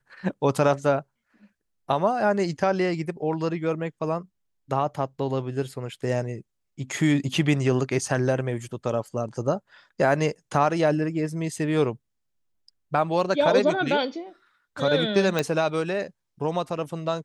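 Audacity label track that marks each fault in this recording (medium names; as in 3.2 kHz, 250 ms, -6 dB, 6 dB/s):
15.390000	15.390000	pop -9 dBFS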